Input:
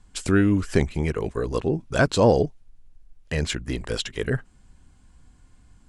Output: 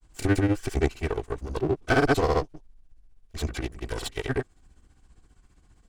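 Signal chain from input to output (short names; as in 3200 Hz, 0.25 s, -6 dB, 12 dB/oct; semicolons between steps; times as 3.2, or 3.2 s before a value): minimum comb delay 2.6 ms; grains 0.1 s, grains 15/s, spray 0.1 s, pitch spread up and down by 0 st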